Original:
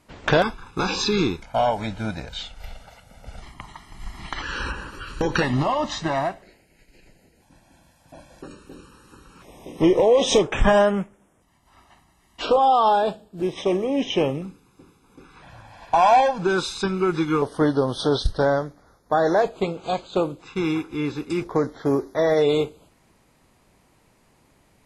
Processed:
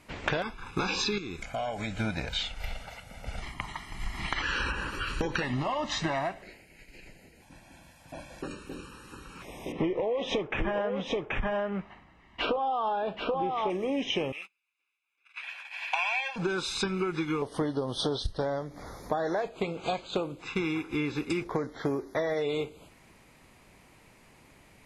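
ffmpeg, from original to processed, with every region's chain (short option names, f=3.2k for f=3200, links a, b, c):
-filter_complex "[0:a]asettb=1/sr,asplit=3[a][b][c];[a]atrim=end=1.184[d];[b]atrim=start=1.18:end=1.99,asetpts=PTS-STARTPTS,afade=t=in:d=0.004:c=qsin,afade=t=out:st=0.806:d=0.004:c=qsin,equalizer=f=7.2k:w=4.9:g=10.5,acompressor=threshold=-36dB:ratio=2.5:attack=3.2:release=140:knee=1:detection=peak,asuperstop=centerf=910:order=4:qfactor=6.2[e];[c]atrim=start=1.986[f];[d][e]acrossfade=d=0.004:c1=hsin:c2=qsin[g];[g][f]acrossfade=d=0.004:c1=qsin:c2=hsin,asettb=1/sr,asplit=3[h][i][j];[h]atrim=end=9.724[k];[i]atrim=start=9.72:end=13.7,asetpts=PTS-STARTPTS,afade=t=in:d=0.004:c=qsin,afade=t=out:st=3.976:d=0.004:c=qsin,lowpass=2.7k,aecho=1:1:781:0.501,atrim=end_sample=175518[l];[j]atrim=start=13.696[m];[k][l]acrossfade=d=0.004:c1=hsin:c2=qsin[n];[n][m]acrossfade=d=0.004:c1=qsin:c2=hsin,asettb=1/sr,asplit=3[o][p][q];[o]atrim=end=14.324[r];[p]atrim=start=14.32:end=16.36,asetpts=PTS-STARTPTS,afade=t=in:d=0.004:c=qsin,afade=t=out:st=2.036:d=0.004:c=qsin,highpass=1.3k,agate=range=-30dB:threshold=-54dB:ratio=16:release=100:detection=peak,equalizer=f=2.6k:t=o:w=0.8:g=13[s];[q]atrim=start=16.356[t];[r][s]acrossfade=d=0.004:c1=hsin:c2=qsin[u];[u][t]acrossfade=d=0.004:c1=qsin:c2=hsin,asettb=1/sr,asplit=3[v][w][x];[v]atrim=end=17.314[y];[w]atrim=start=17.31:end=19.2,asetpts=PTS-STARTPTS,afade=t=in:d=0.004:c=qsin,afade=t=out:st=1.886:d=0.004:c=qsin,equalizer=f=1.5k:w=3.1:g=-6.5,acompressor=mode=upward:threshold=-32dB:ratio=2.5:attack=3.2:release=140:knee=2.83:detection=peak[z];[x]atrim=start=19.196[aa];[y][z]acrossfade=d=0.004:c1=hsin:c2=qsin[ab];[ab][aa]acrossfade=d=0.004:c1=qsin:c2=hsin,equalizer=f=2.3k:w=1.8:g=6.5,acompressor=threshold=-28dB:ratio=12,volume=1.5dB"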